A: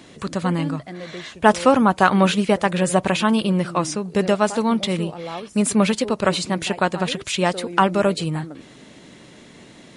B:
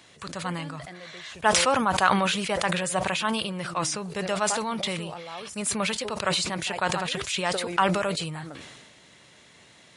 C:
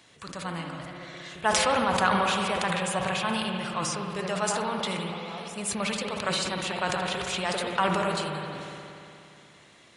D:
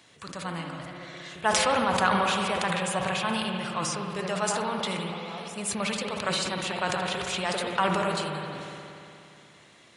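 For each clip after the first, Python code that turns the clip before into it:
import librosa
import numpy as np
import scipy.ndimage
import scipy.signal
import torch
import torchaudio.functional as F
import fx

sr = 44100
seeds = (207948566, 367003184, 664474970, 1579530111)

y1 = scipy.signal.sosfilt(scipy.signal.butter(2, 71.0, 'highpass', fs=sr, output='sos'), x)
y1 = fx.peak_eq(y1, sr, hz=260.0, db=-13.5, octaves=2.0)
y1 = fx.sustainer(y1, sr, db_per_s=34.0)
y1 = y1 * 10.0 ** (-4.0 / 20.0)
y2 = fx.rev_spring(y1, sr, rt60_s=2.8, pass_ms=(59,), chirp_ms=30, drr_db=2.0)
y2 = y2 * 10.0 ** (-3.5 / 20.0)
y3 = scipy.signal.sosfilt(scipy.signal.butter(2, 60.0, 'highpass', fs=sr, output='sos'), y2)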